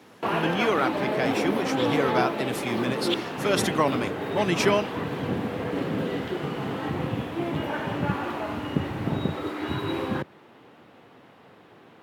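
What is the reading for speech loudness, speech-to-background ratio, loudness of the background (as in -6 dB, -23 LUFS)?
-27.5 LUFS, 1.0 dB, -28.5 LUFS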